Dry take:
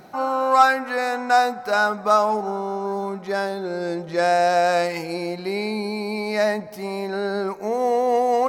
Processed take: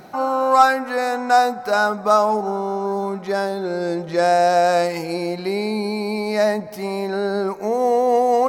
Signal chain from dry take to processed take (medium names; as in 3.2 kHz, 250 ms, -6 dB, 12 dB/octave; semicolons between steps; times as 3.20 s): dynamic bell 2.3 kHz, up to -5 dB, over -35 dBFS, Q 0.71; trim +3.5 dB